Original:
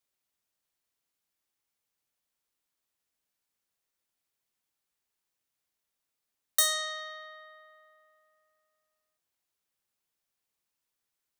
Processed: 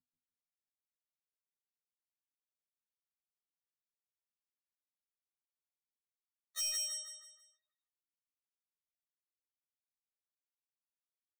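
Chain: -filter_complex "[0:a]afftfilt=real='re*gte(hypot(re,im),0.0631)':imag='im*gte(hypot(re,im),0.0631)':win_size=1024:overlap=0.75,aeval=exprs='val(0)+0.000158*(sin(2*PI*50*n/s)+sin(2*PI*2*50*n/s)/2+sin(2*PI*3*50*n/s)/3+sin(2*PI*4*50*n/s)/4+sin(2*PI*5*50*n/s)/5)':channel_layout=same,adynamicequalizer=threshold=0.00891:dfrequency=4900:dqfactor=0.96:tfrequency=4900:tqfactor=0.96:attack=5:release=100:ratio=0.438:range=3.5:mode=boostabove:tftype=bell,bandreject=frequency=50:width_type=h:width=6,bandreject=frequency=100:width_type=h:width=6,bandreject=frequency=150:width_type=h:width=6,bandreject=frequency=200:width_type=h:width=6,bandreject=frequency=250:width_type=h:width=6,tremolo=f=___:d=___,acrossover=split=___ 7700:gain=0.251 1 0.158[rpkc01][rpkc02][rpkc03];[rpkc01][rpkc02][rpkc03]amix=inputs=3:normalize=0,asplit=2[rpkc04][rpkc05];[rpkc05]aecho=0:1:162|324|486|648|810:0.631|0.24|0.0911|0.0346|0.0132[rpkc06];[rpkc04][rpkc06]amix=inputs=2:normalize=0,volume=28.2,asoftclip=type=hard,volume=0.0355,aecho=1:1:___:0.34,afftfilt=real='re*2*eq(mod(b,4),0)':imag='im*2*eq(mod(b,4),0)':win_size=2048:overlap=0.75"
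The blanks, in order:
3, 0.78, 170, 5.6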